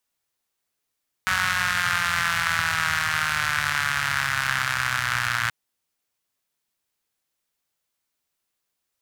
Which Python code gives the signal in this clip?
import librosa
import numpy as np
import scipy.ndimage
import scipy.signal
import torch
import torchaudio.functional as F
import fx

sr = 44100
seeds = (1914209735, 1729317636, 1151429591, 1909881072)

y = fx.engine_four_rev(sr, seeds[0], length_s=4.23, rpm=5600, resonances_hz=(100.0, 1500.0), end_rpm=3500)